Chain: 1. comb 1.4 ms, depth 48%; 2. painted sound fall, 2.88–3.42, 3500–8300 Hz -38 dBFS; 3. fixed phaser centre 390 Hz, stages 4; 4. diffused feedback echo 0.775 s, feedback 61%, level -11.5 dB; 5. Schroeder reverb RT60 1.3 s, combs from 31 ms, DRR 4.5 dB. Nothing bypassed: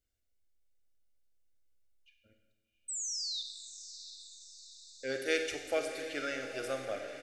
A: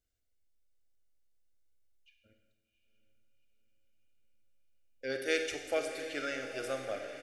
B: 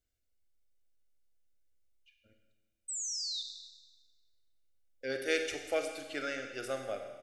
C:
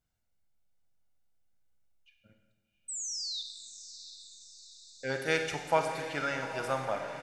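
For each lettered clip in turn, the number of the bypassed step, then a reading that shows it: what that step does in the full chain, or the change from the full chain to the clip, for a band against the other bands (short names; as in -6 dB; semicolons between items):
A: 2, 8 kHz band -9.5 dB; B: 4, echo-to-direct -3.0 dB to -4.5 dB; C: 3, 125 Hz band +11.5 dB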